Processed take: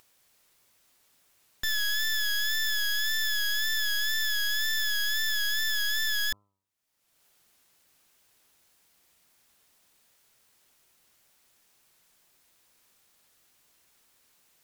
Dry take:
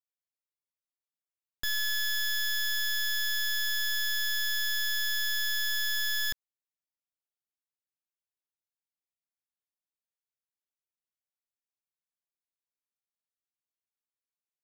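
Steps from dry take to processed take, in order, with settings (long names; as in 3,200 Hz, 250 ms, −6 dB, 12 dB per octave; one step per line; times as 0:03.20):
upward compression, threshold −45 dBFS
hum removal 99.27 Hz, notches 13
tape wow and flutter 51 cents
level +2 dB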